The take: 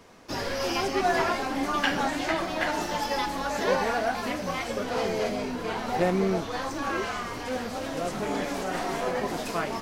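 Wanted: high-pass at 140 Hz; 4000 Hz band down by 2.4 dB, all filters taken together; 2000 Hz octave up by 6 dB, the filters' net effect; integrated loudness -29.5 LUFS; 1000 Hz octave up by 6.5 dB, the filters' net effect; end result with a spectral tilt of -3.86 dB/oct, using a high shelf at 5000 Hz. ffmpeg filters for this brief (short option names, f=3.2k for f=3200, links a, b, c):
-af "highpass=140,equalizer=f=1k:t=o:g=7.5,equalizer=f=2k:t=o:g=6,equalizer=f=4k:t=o:g=-9,highshelf=f=5k:g=5,volume=-5dB"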